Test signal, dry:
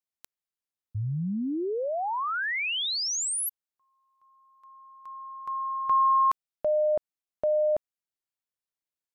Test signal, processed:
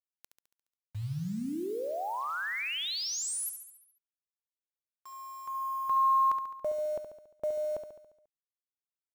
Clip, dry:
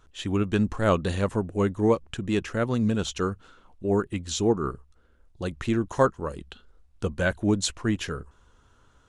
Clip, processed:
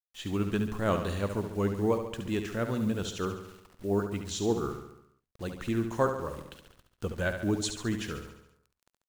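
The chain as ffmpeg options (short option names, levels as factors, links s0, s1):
-filter_complex "[0:a]acrusher=bits=7:mix=0:aa=0.000001,asplit=2[s0][s1];[s1]aecho=0:1:70|140|210|280|350|420|490:0.398|0.227|0.129|0.0737|0.042|0.024|0.0137[s2];[s0][s2]amix=inputs=2:normalize=0,volume=0.501"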